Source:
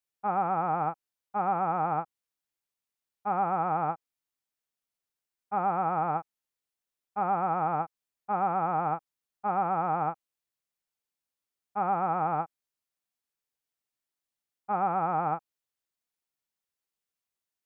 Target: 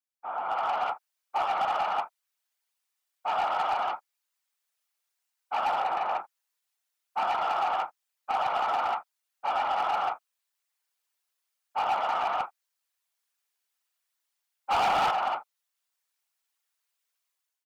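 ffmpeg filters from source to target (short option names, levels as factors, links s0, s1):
-filter_complex "[0:a]asettb=1/sr,asplit=3[s0][s1][s2];[s0]atrim=end=5.804[s3];[s1]atrim=start=5.8:end=6.2,asetpts=PTS-STARTPTS,afade=t=in:d=0.004:c=qsin,afade=t=out:st=0.396:d=0.004:c=qsin,lowpass=1100[s4];[s2]atrim=start=6.196[s5];[s3][s4]acrossfade=d=0.004:c1=hsin:c2=qsin[s6];[s6][s5]acrossfade=d=0.004:c1=qsin:c2=hsin,aecho=1:1:30|41:0.141|0.211,dynaudnorm=f=210:g=5:m=5.01,asoftclip=type=tanh:threshold=0.224,asettb=1/sr,asplit=3[s7][s8][s9];[s7]atrim=end=14.714[s10];[s8]atrim=start=14.71:end=15.11,asetpts=PTS-STARTPTS,afade=t=in:d=0.004:c=qsin,afade=t=out:st=0.396:d=0.004:c=qsin,acontrast=72[s11];[s9]atrim=start=15.106[s12];[s10][s11]acrossfade=d=0.004:c1=hsin:c2=qsin[s13];[s13][s12]acrossfade=d=0.004:c1=qsin:c2=hsin,afftfilt=real='hypot(re,im)*cos(2*PI*random(0))':imag='hypot(re,im)*sin(2*PI*random(1))':win_size=512:overlap=0.75,highpass=790,asoftclip=type=hard:threshold=0.0841"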